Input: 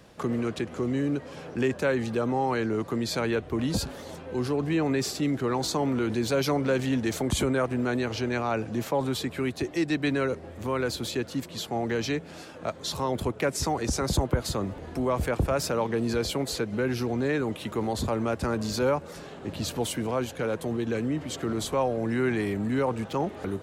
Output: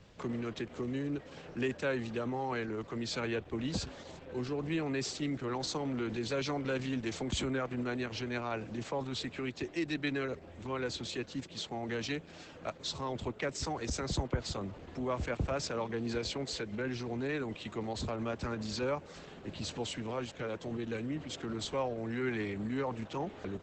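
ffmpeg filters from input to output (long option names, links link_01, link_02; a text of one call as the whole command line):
ffmpeg -i in.wav -filter_complex "[0:a]acrossover=split=150|1400|3500[link_01][link_02][link_03][link_04];[link_01]acompressor=mode=upward:threshold=-45dB:ratio=2.5[link_05];[link_03]crystalizer=i=4.5:c=0[link_06];[link_05][link_02][link_06][link_04]amix=inputs=4:normalize=0,volume=-7.5dB" -ar 48000 -c:a libopus -b:a 12k out.opus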